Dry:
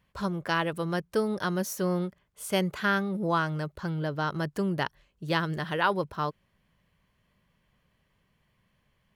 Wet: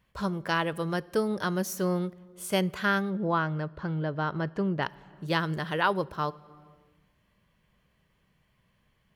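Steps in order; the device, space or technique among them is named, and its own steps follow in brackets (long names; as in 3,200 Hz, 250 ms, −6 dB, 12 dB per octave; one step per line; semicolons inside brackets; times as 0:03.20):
0:03.10–0:04.83: Bessel low-pass filter 2,700 Hz, order 2
compressed reverb return (on a send at −5 dB: convolution reverb RT60 1.0 s, pre-delay 5 ms + downward compressor 6 to 1, threshold −42 dBFS, peak gain reduction 18.5 dB)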